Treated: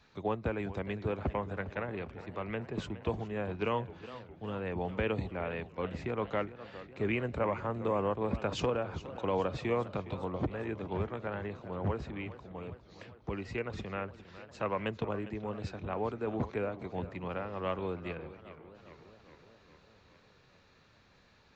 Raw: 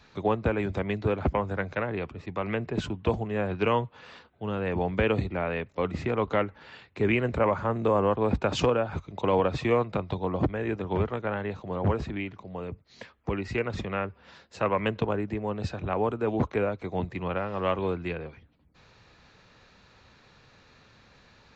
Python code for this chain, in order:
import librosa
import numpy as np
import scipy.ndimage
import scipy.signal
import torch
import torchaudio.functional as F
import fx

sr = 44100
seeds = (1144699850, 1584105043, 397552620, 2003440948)

y = fx.echo_warbled(x, sr, ms=409, feedback_pct=64, rate_hz=2.8, cents=157, wet_db=-15.0)
y = y * 10.0 ** (-7.5 / 20.0)